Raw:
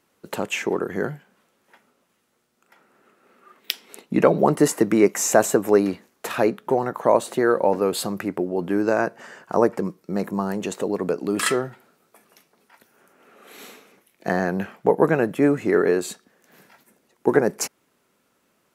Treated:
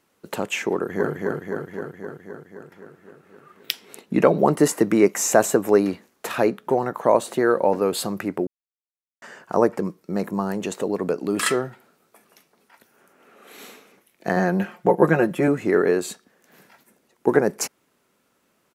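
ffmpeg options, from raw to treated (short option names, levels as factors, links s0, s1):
-filter_complex "[0:a]asplit=2[s0][s1];[s1]afade=t=in:st=0.73:d=0.01,afade=t=out:st=1.13:d=0.01,aecho=0:1:260|520|780|1040|1300|1560|1820|2080|2340|2600|2860|3120:0.794328|0.55603|0.389221|0.272455|0.190718|0.133503|0.0934519|0.0654163|0.0457914|0.032054|0.0224378|0.0157065[s2];[s0][s2]amix=inputs=2:normalize=0,asettb=1/sr,asplit=3[s3][s4][s5];[s3]atrim=end=14.364[s6];[s4]atrim=start=14.36:end=15.48,asetpts=PTS-STARTPTS,afade=t=in:d=0.004:c=qsin,afade=t=out:st=1.116:d=0.004:c=qsin,aecho=1:1:5.6:0.65,atrim=end_sample=49392[s7];[s5]atrim=start=15.476[s8];[s6][s7]acrossfade=d=0.004:c1=hsin:c2=qsin[s9];[s9][s8]acrossfade=d=0.004:c1=qsin:c2=hsin,asplit=3[s10][s11][s12];[s10]atrim=end=8.47,asetpts=PTS-STARTPTS,afade=t=out:st=8.466:d=0.004:c=hsin[s13];[s11]atrim=start=8.47:end=9.22,asetpts=PTS-STARTPTS,volume=0[s14];[s12]atrim=start=9.22,asetpts=PTS-STARTPTS,afade=t=in:d=0.004:c=hsin[s15];[s13][s14][s15]concat=n=3:v=0:a=1"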